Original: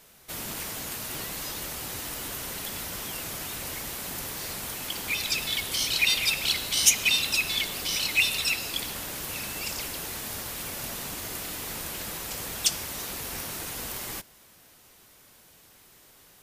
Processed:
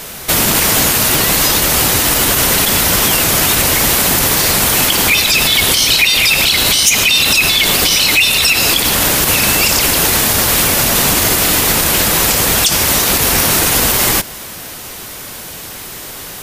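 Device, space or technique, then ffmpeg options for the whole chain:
loud club master: -af "acompressor=threshold=-36dB:ratio=1.5,asoftclip=type=hard:threshold=-17dB,alimiter=level_in=28dB:limit=-1dB:release=50:level=0:latency=1,volume=-1dB"

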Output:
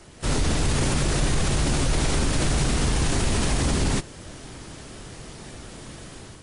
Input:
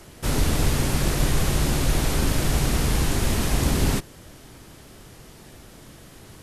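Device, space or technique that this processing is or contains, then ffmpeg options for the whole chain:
low-bitrate web radio: -af "dynaudnorm=framelen=130:gausssize=5:maxgain=7.5dB,alimiter=limit=-12dB:level=0:latency=1:release=28,volume=-1.5dB" -ar 24000 -c:a libmp3lame -b:a 40k

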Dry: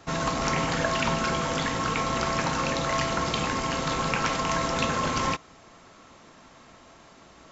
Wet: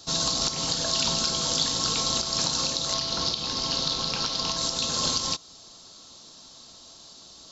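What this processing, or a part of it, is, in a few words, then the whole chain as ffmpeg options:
over-bright horn tweeter: -filter_complex "[0:a]highshelf=frequency=3000:width_type=q:width=3:gain=12.5,alimiter=limit=-7.5dB:level=0:latency=1:release=229,asettb=1/sr,asplit=3[link_01][link_02][link_03];[link_01]atrim=end=2.944[link_04];[link_02]atrim=start=2.94:end=4.57,asetpts=PTS-STARTPTS,afade=type=in:duration=0.004:curve=qsin,afade=type=out:start_time=1.626:duration=0.004:curve=qsin,lowpass=frequency=5600:width=0.5412,lowpass=frequency=5600:width=1.3066[link_05];[link_03]atrim=start=4.566[link_06];[link_04][link_05]acrossfade=duration=0.004:curve1=hsin:curve2=qsin[link_07];[link_07][link_06]acrossfade=duration=0.004:curve1=qsin:curve2=hsin,volume=-4dB"

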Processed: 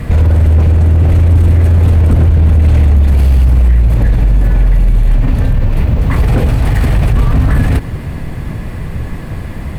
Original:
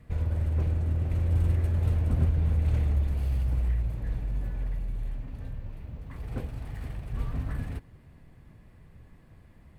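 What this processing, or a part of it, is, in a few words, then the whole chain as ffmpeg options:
loud club master: -af "acompressor=threshold=-29dB:ratio=2.5,asoftclip=type=hard:threshold=-26.5dB,alimiter=level_in=34.5dB:limit=-1dB:release=50:level=0:latency=1,volume=-2.5dB"

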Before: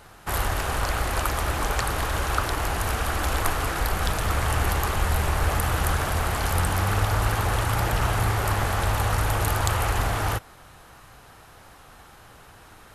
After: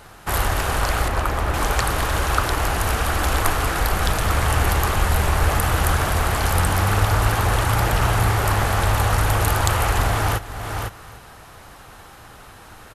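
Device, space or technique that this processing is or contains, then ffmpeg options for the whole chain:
ducked delay: -filter_complex "[0:a]asplit=3[link_01][link_02][link_03];[link_02]adelay=504,volume=-5.5dB[link_04];[link_03]apad=whole_len=592983[link_05];[link_04][link_05]sidechaincompress=threshold=-41dB:ratio=8:attack=16:release=266[link_06];[link_01][link_06]amix=inputs=2:normalize=0,asettb=1/sr,asplit=3[link_07][link_08][link_09];[link_07]atrim=end=1.084[link_10];[link_08]atrim=start=1.08:end=1.54,asetpts=PTS-STARTPTS,afade=type=in:duration=0.004:curve=qsin,afade=type=out:start_time=0.456:duration=0.004:curve=qsin,highshelf=frequency=3000:gain=-10.5[link_11];[link_09]atrim=start=1.536[link_12];[link_10][link_11]acrossfade=duration=0.004:curve1=hsin:curve2=qsin[link_13];[link_13][link_12]acrossfade=duration=0.004:curve1=qsin:curve2=hsin,aecho=1:1:298:0.141,volume=4.5dB"

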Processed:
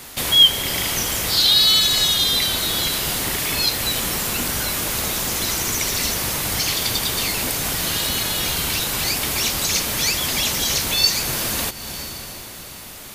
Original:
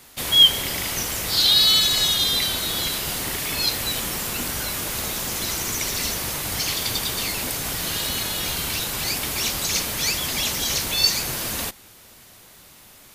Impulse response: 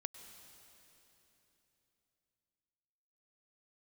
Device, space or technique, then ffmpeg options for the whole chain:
ducked reverb: -filter_complex "[0:a]asplit=3[link_01][link_02][link_03];[1:a]atrim=start_sample=2205[link_04];[link_02][link_04]afir=irnorm=-1:irlink=0[link_05];[link_03]apad=whole_len=579743[link_06];[link_05][link_06]sidechaincompress=threshold=-34dB:ratio=8:attack=5.4:release=336,volume=10.5dB[link_07];[link_01][link_07]amix=inputs=2:normalize=0"

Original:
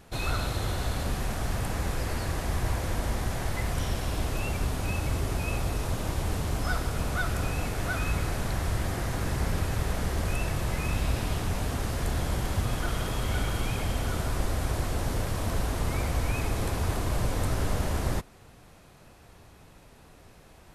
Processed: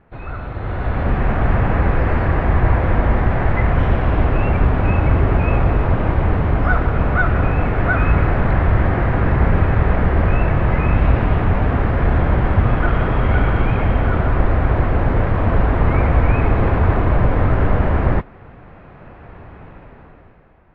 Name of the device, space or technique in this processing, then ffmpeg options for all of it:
action camera in a waterproof case: -af "lowpass=frequency=2100:width=0.5412,lowpass=frequency=2100:width=1.3066,dynaudnorm=framelen=160:gausssize=11:maxgain=15.5dB" -ar 22050 -c:a aac -b:a 48k

